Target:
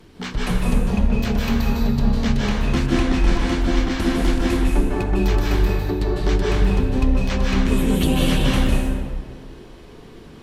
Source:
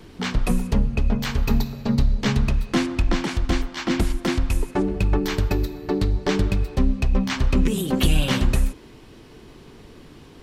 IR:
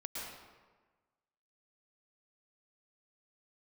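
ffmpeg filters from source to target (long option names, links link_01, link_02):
-filter_complex "[1:a]atrim=start_sample=2205,asetrate=31311,aresample=44100[link_01];[0:a][link_01]afir=irnorm=-1:irlink=0"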